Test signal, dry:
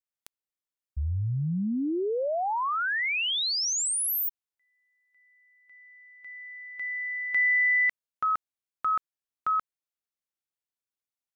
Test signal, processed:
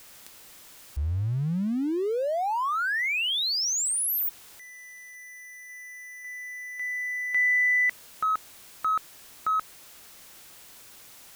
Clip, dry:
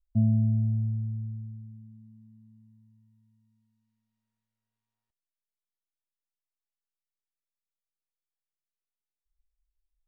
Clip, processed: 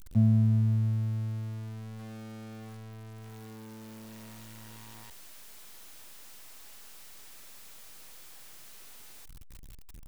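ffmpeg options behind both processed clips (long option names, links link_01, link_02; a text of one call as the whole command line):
ffmpeg -i in.wav -af "aeval=exprs='val(0)+0.5*0.01*sgn(val(0))':channel_layout=same" out.wav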